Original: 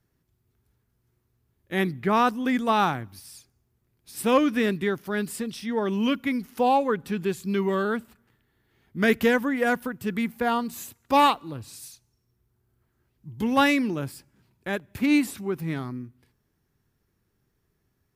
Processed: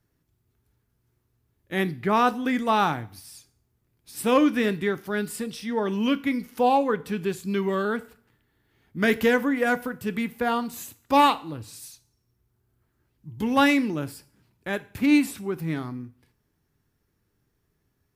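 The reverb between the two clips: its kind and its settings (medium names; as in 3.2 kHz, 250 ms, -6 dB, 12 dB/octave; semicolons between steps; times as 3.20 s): FDN reverb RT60 0.44 s, low-frequency decay 0.8×, high-frequency decay 1×, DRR 12 dB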